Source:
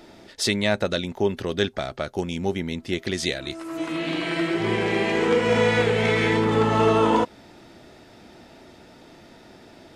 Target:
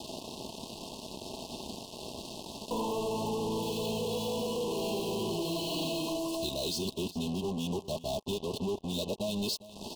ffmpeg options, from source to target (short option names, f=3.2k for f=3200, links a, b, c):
-af "areverse,highpass=f=42:w=0.5412,highpass=f=42:w=1.3066,equalizer=f=4.3k:w=7.8:g=11.5,aecho=1:1:4.7:0.37,bandreject=f=435.6:t=h:w=4,bandreject=f=871.2:t=h:w=4,bandreject=f=1.3068k:t=h:w=4,bandreject=f=1.7424k:t=h:w=4,bandreject=f=2.178k:t=h:w=4,bandreject=f=2.6136k:t=h:w=4,bandreject=f=3.0492k:t=h:w=4,bandreject=f=3.4848k:t=h:w=4,acompressor=threshold=-33dB:ratio=10,acrusher=bits=6:mix=0:aa=0.5,asoftclip=type=tanh:threshold=-37.5dB,asuperstop=centerf=1700:order=20:qfactor=1.1,aecho=1:1:404:0.141,volume=8.5dB"